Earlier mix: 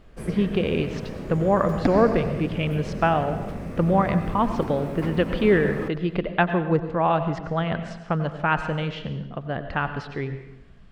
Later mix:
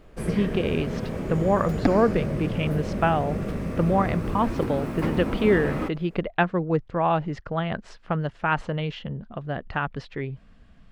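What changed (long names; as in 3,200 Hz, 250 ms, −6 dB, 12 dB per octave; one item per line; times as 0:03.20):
first sound +4.5 dB
second sound +4.0 dB
reverb: off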